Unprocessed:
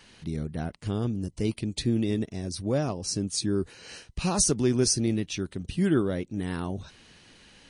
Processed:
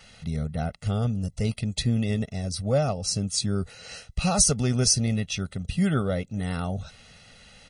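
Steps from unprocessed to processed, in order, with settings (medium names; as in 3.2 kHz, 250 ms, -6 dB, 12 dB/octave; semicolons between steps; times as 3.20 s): comb 1.5 ms, depth 86%; trim +1 dB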